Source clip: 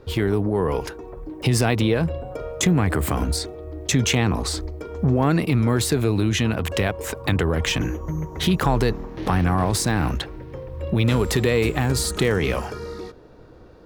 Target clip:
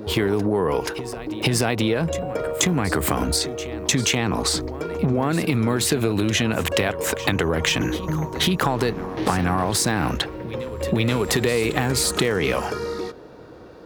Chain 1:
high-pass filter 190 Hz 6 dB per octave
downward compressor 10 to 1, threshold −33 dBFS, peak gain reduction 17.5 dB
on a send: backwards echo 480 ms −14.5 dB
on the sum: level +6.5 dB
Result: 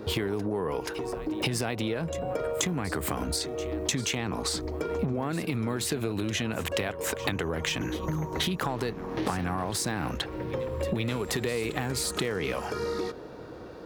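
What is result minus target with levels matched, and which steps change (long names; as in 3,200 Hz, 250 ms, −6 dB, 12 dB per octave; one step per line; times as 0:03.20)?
downward compressor: peak gain reduction +9 dB
change: downward compressor 10 to 1, threshold −23 dBFS, peak gain reduction 8.5 dB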